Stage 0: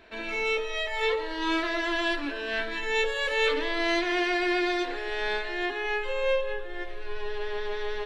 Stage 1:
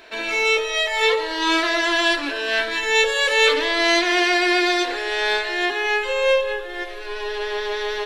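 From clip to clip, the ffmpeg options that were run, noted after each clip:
ffmpeg -i in.wav -af "bass=frequency=250:gain=-13,treble=frequency=4000:gain=8,volume=8.5dB" out.wav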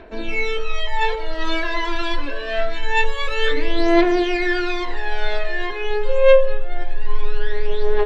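ffmpeg -i in.wav -af "aphaser=in_gain=1:out_gain=1:delay=2.2:decay=0.69:speed=0.25:type=triangular,aemphasis=mode=reproduction:type=riaa,volume=-5dB" out.wav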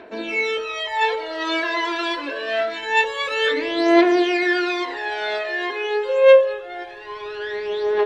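ffmpeg -i in.wav -af "highpass=210,volume=1.5dB" out.wav

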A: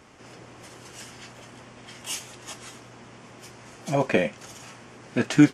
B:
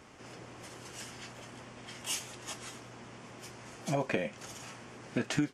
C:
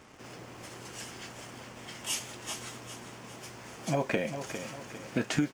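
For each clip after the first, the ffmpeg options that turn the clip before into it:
ffmpeg -i in.wav -af "acompressor=threshold=-25dB:ratio=8,volume=-2.5dB" out.wav
ffmpeg -i in.wav -filter_complex "[0:a]asplit=2[link_01][link_02];[link_02]acrusher=bits=7:mix=0:aa=0.000001,volume=-11dB[link_03];[link_01][link_03]amix=inputs=2:normalize=0,aecho=1:1:402|804|1206|1608|2010:0.335|0.144|0.0619|0.0266|0.0115" out.wav

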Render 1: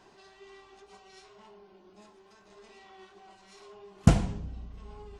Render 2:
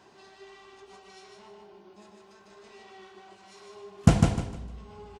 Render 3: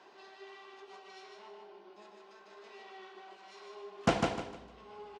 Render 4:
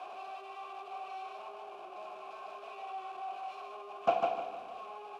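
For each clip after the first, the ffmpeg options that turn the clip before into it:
ffmpeg -i in.wav -filter_complex "[0:a]highpass=57,asplit=2[link_01][link_02];[link_02]aecho=0:1:152|304|456|608:0.668|0.201|0.0602|0.018[link_03];[link_01][link_03]amix=inputs=2:normalize=0,volume=1.5dB" out.wav
ffmpeg -i in.wav -filter_complex "[0:a]acrossover=split=290 5400:gain=0.0891 1 0.141[link_01][link_02][link_03];[link_01][link_02][link_03]amix=inputs=3:normalize=0" out.wav
ffmpeg -i in.wav -filter_complex "[0:a]aeval=exprs='val(0)+0.5*0.0119*sgn(val(0))':channel_layout=same,asplit=3[link_01][link_02][link_03];[link_01]bandpass=frequency=730:width_type=q:width=8,volume=0dB[link_04];[link_02]bandpass=frequency=1090:width_type=q:width=8,volume=-6dB[link_05];[link_03]bandpass=frequency=2440:width_type=q:width=8,volume=-9dB[link_06];[link_04][link_05][link_06]amix=inputs=3:normalize=0,volume=7dB" -ar 44100 -c:a mp2 -b:a 192k out.mp2

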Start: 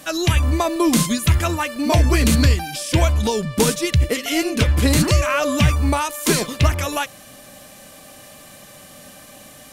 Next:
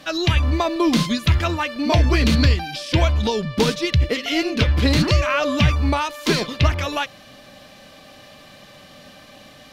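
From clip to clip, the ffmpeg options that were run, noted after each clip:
ffmpeg -i in.wav -af "highshelf=frequency=6200:width_type=q:width=1.5:gain=-12.5,volume=-1dB" out.wav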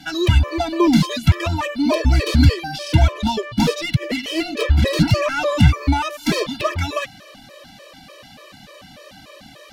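ffmpeg -i in.wav -filter_complex "[0:a]acrossover=split=510|800[link_01][link_02][link_03];[link_03]asoftclip=type=tanh:threshold=-21.5dB[link_04];[link_01][link_02][link_04]amix=inputs=3:normalize=0,afftfilt=real='re*gt(sin(2*PI*3.4*pts/sr)*(1-2*mod(floor(b*sr/1024/330),2)),0)':imag='im*gt(sin(2*PI*3.4*pts/sr)*(1-2*mod(floor(b*sr/1024/330),2)),0)':win_size=1024:overlap=0.75,volume=5dB" out.wav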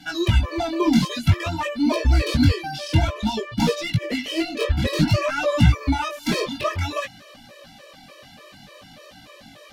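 ffmpeg -i in.wav -af "flanger=delay=17:depth=5:speed=0.54" out.wav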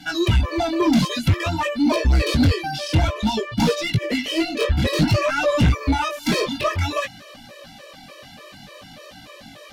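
ffmpeg -i in.wav -af "asoftclip=type=tanh:threshold=-14dB,volume=3.5dB" out.wav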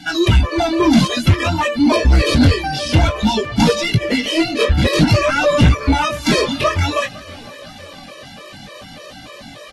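ffmpeg -i in.wav -af "aecho=1:1:507|1014|1521:0.0708|0.0304|0.0131,volume=5dB" -ar 32000 -c:a aac -b:a 32k out.aac

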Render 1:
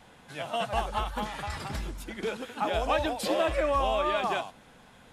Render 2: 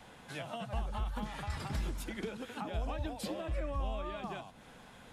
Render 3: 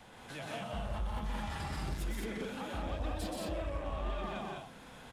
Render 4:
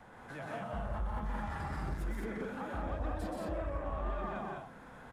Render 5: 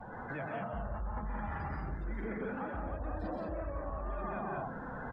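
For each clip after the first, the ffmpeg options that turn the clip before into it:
ffmpeg -i in.wav -filter_complex "[0:a]acrossover=split=230[link_01][link_02];[link_02]acompressor=threshold=-40dB:ratio=10[link_03];[link_01][link_03]amix=inputs=2:normalize=0" out.wav
ffmpeg -i in.wav -filter_complex "[0:a]asoftclip=type=tanh:threshold=-35dB,asplit=2[link_01][link_02];[link_02]aecho=0:1:125.4|174.9|212.8:0.708|0.794|0.708[link_03];[link_01][link_03]amix=inputs=2:normalize=0,volume=-1dB" out.wav
ffmpeg -i in.wav -af "highshelf=frequency=2200:width_type=q:width=1.5:gain=-9" out.wav
ffmpeg -i in.wav -af "lowpass=6600,afftdn=noise_reduction=22:noise_floor=-54,areverse,acompressor=threshold=-46dB:ratio=10,areverse,volume=11dB" out.wav

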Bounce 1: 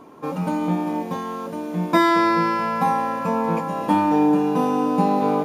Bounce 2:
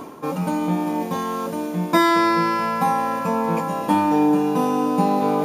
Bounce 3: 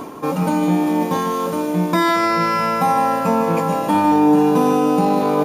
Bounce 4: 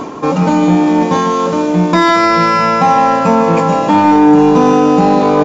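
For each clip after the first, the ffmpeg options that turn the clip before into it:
ffmpeg -i in.wav -af "highshelf=frequency=5500:gain=8,areverse,acompressor=mode=upward:threshold=-19dB:ratio=2.5,areverse" out.wav
ffmpeg -i in.wav -af "alimiter=limit=-12.5dB:level=0:latency=1:release=15,aecho=1:1:153:0.355,volume=4.5dB" out.wav
ffmpeg -i in.wav -af "aresample=16000,aresample=44100,acontrast=66,volume=1.5dB" out.wav

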